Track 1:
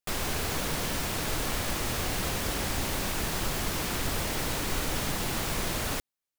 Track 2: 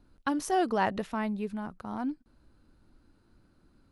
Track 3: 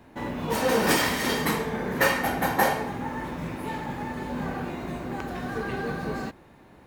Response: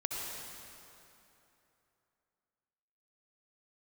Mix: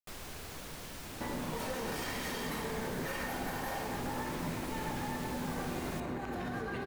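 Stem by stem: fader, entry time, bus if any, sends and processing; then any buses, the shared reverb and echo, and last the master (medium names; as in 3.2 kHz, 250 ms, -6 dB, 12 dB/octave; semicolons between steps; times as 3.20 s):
-14.5 dB, 0.00 s, no send, none
mute
-2.0 dB, 1.05 s, send -7 dB, compression, threshold -33 dBFS, peak gain reduction 15 dB; peak limiter -31 dBFS, peak gain reduction 10 dB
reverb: on, RT60 3.0 s, pre-delay 57 ms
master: none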